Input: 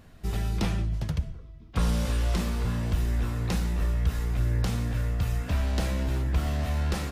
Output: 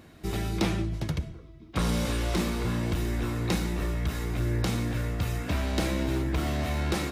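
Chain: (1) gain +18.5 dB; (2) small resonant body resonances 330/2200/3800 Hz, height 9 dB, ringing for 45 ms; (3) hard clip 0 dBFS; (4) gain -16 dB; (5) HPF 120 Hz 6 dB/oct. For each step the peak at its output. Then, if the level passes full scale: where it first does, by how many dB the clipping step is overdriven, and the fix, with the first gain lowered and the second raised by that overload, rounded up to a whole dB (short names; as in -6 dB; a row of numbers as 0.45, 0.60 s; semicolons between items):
+4.0, +5.5, 0.0, -16.0, -14.0 dBFS; step 1, 5.5 dB; step 1 +12.5 dB, step 4 -10 dB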